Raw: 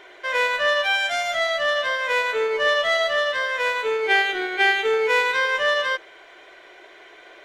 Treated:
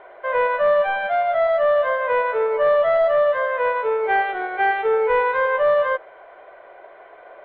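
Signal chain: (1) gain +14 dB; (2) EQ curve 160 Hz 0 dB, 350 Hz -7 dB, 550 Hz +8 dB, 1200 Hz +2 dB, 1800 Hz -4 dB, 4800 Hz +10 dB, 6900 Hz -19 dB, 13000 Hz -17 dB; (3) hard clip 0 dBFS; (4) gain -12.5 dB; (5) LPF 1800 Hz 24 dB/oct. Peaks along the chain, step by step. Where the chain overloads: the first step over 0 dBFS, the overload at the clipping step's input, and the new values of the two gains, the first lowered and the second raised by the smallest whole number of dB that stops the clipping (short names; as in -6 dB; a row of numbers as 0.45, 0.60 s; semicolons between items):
+5.0, +7.0, 0.0, -12.5, -11.0 dBFS; step 1, 7.0 dB; step 1 +7 dB, step 4 -5.5 dB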